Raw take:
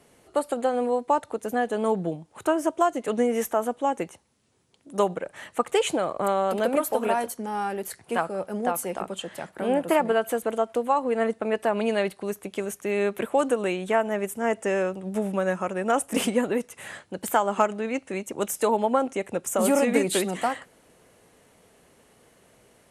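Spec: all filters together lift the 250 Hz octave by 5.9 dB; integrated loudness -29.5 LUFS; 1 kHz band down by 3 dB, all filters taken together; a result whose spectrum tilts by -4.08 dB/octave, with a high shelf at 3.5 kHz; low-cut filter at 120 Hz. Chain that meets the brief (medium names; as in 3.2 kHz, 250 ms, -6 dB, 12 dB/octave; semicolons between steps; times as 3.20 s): high-pass 120 Hz; peaking EQ 250 Hz +7.5 dB; peaking EQ 1 kHz -4 dB; treble shelf 3.5 kHz -9 dB; trim -4.5 dB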